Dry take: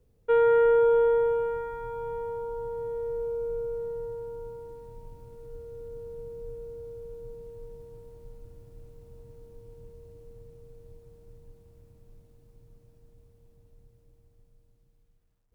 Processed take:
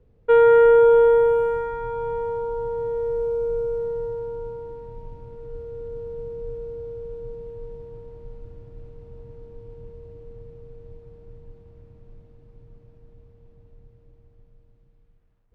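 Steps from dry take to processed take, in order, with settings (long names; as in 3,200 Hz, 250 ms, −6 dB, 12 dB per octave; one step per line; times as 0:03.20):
low-pass that shuts in the quiet parts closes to 2,500 Hz, open at −22.5 dBFS
level +7 dB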